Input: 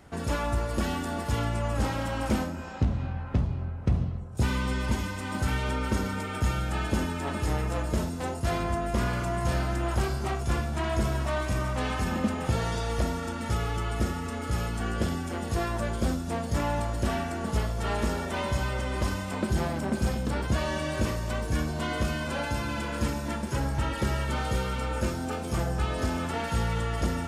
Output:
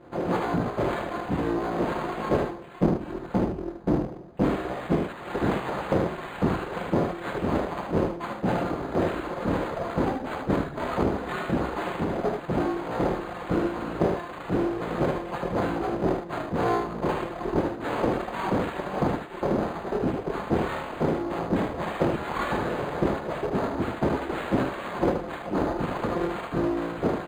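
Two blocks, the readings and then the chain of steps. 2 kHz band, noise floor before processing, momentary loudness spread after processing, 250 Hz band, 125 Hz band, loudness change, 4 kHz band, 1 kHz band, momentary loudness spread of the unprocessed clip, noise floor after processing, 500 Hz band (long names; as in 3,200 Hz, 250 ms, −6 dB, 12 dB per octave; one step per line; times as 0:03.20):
−0.5 dB, −35 dBFS, 3 LU, +4.5 dB, −3.5 dB, +2.0 dB, −4.5 dB, +3.5 dB, 3 LU, −39 dBFS, +6.0 dB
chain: lower of the sound and its delayed copy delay 5.7 ms
elliptic low-pass filter 11,000 Hz
tilt shelving filter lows +8.5 dB
notch filter 1,000 Hz
on a send: ambience of single reflections 24 ms −3 dB, 52 ms −8 dB, 63 ms −10 dB
on the sum: reverb reduction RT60 1.6 s
speech leveller 0.5 s
full-wave rectification
high-pass filter 41 Hz
low-shelf EQ 130 Hz −10 dB
single-tap delay 76 ms −5.5 dB
linearly interpolated sample-rate reduction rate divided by 8×
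level +5 dB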